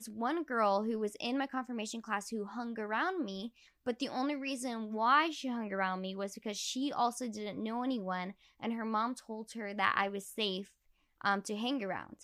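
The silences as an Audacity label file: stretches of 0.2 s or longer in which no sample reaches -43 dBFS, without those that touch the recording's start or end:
3.480000	3.860000	silence
8.310000	8.620000	silence
10.630000	11.210000	silence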